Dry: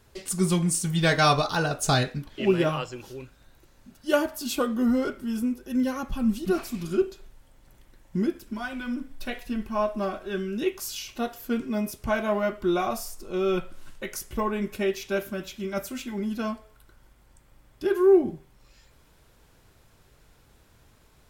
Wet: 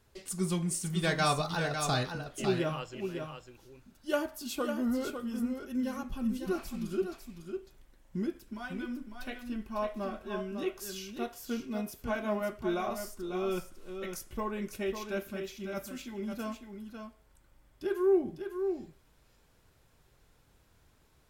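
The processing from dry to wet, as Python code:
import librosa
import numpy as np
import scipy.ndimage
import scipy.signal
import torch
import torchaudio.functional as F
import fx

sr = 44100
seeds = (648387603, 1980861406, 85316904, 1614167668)

y = x + 10.0 ** (-7.0 / 20.0) * np.pad(x, (int(551 * sr / 1000.0), 0))[:len(x)]
y = F.gain(torch.from_numpy(y), -8.0).numpy()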